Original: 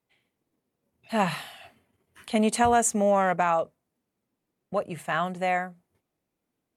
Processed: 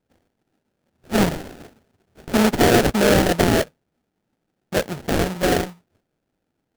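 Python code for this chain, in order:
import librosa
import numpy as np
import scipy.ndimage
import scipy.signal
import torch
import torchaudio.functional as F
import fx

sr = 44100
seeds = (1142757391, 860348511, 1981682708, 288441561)

y = fx.sample_hold(x, sr, seeds[0], rate_hz=1100.0, jitter_pct=20)
y = y * 10.0 ** (6.5 / 20.0)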